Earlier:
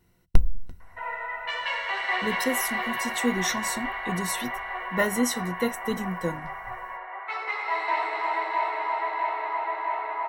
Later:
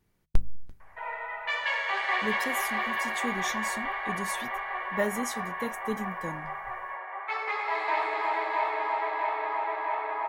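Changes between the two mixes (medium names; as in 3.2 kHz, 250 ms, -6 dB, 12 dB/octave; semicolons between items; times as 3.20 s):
speech -6.0 dB; master: remove rippled EQ curve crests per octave 2, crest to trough 10 dB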